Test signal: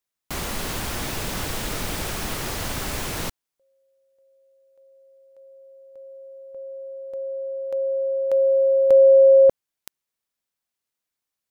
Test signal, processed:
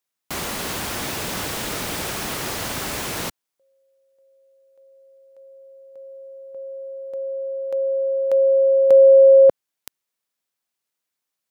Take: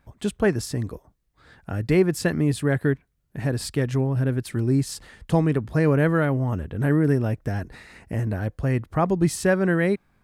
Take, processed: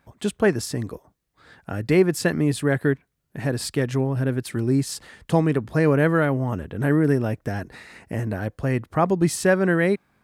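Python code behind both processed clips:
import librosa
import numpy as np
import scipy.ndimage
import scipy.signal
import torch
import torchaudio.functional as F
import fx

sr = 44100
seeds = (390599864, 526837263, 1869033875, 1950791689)

y = fx.highpass(x, sr, hz=160.0, slope=6)
y = y * librosa.db_to_amplitude(2.5)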